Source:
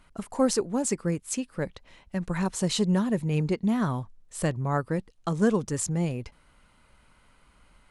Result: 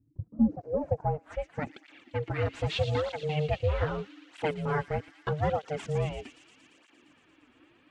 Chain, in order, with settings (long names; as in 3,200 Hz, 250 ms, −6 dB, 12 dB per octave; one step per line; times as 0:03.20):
healed spectral selection 0:00.62–0:00.86, 1,800–9,100 Hz
in parallel at −11 dB: sample-rate reduction 6,600 Hz
on the sum: ring modulation 300 Hz
low-pass filter sweep 130 Hz → 2,900 Hz, 0:00.12–0:01.63
delay with a high-pass on its return 115 ms, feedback 79%, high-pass 4,000 Hz, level −5 dB
through-zero flanger with one copy inverted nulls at 0.8 Hz, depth 6 ms